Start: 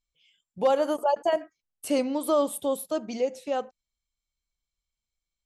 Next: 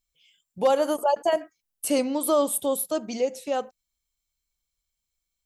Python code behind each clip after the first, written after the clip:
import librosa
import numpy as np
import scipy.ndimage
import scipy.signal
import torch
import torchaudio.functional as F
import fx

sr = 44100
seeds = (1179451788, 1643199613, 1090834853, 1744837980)

y = fx.high_shelf(x, sr, hz=7100.0, db=10.5)
y = y * librosa.db_to_amplitude(1.5)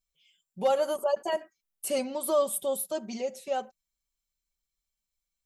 y = x + 0.72 * np.pad(x, (int(5.2 * sr / 1000.0), 0))[:len(x)]
y = y * librosa.db_to_amplitude(-6.5)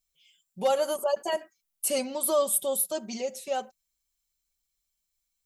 y = fx.high_shelf(x, sr, hz=3400.0, db=7.5)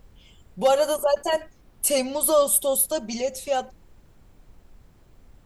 y = fx.dmg_noise_colour(x, sr, seeds[0], colour='brown', level_db=-56.0)
y = y * librosa.db_to_amplitude(5.5)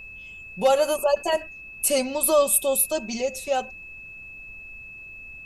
y = x + 10.0 ** (-39.0 / 20.0) * np.sin(2.0 * np.pi * 2600.0 * np.arange(len(x)) / sr)